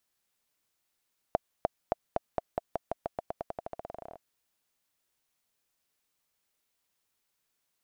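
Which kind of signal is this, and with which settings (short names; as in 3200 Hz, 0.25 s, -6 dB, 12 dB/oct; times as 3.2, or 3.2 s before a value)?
bouncing ball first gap 0.30 s, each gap 0.9, 674 Hz, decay 21 ms -11.5 dBFS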